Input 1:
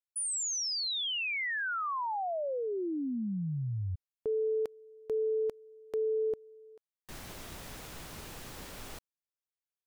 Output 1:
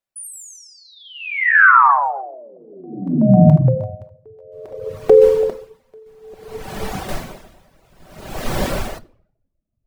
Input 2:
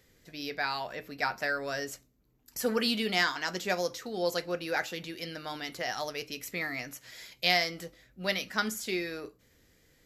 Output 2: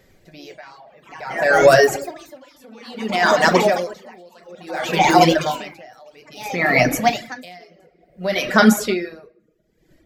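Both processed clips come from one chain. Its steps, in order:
parametric band 640 Hz +8 dB 0.37 octaves
automatic gain control gain up to 15.5 dB
high-shelf EQ 2,500 Hz −8 dB
delay with pitch and tempo change per echo 102 ms, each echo +3 semitones, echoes 3, each echo −6 dB
rectangular room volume 1,100 cubic metres, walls mixed, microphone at 1.1 metres
reverb reduction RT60 0.77 s
boost into a limiter +10.5 dB
tremolo with a sine in dB 0.58 Hz, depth 35 dB

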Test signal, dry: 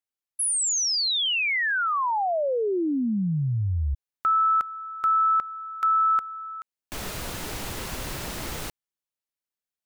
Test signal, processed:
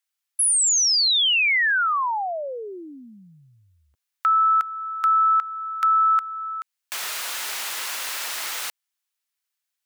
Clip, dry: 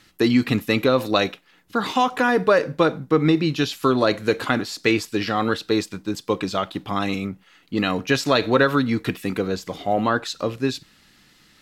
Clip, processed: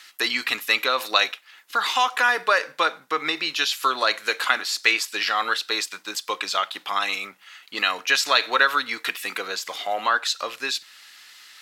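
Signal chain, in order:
high-pass filter 1,200 Hz 12 dB per octave
in parallel at −1 dB: downward compressor, threshold −39 dBFS
on the sum: level +4 dB

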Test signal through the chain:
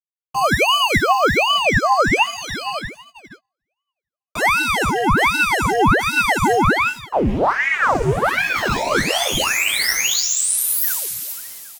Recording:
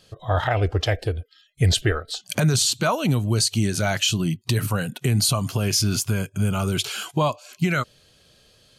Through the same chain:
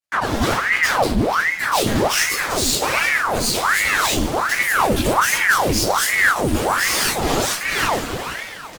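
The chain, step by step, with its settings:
fuzz pedal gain 44 dB, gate −48 dBFS
low-shelf EQ 340 Hz +5 dB
single-tap delay 479 ms −22.5 dB
coupled-rooms reverb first 0.41 s, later 3.2 s, from −21 dB, DRR −9 dB
dynamic equaliser 1,700 Hz, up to −4 dB, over −18 dBFS, Q 0.94
reversed playback
downward compressor 6 to 1, threshold −12 dBFS
reversed playback
multi-voice chorus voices 4, 0.7 Hz, delay 12 ms, depth 3.5 ms
noise gate −38 dBFS, range −34 dB
ring modulator whose carrier an LFO sweeps 1,100 Hz, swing 90%, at 1.3 Hz
level +1.5 dB

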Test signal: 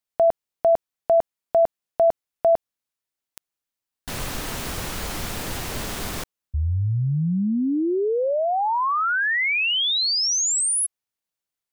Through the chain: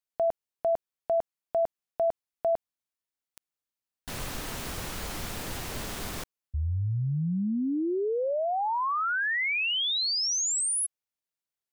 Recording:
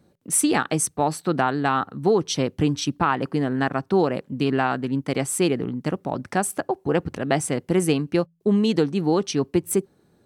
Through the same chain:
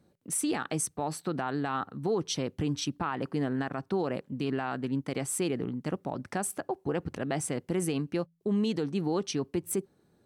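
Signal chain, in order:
brickwall limiter −15 dBFS
level −6 dB

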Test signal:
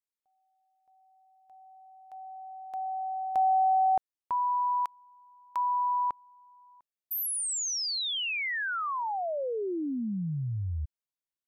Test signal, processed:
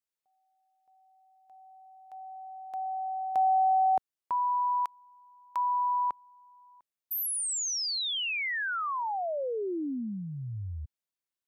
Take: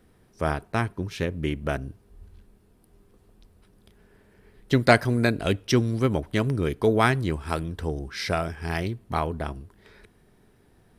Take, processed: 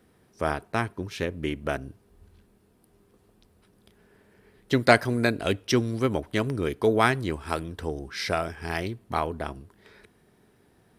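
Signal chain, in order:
high-pass filter 120 Hz 6 dB per octave
dynamic equaliser 160 Hz, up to −4 dB, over −41 dBFS, Q 2

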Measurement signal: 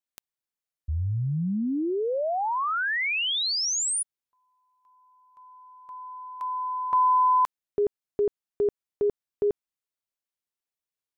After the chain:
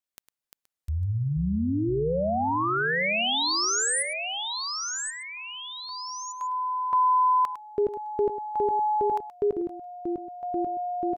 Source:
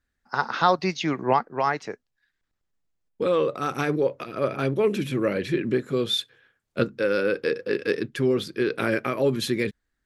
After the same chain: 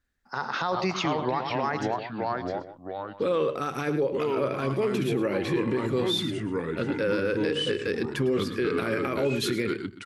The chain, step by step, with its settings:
single-tap delay 105 ms −13.5 dB
delay with pitch and tempo change per echo 314 ms, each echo −3 semitones, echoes 2, each echo −6 dB
brickwall limiter −17.5 dBFS

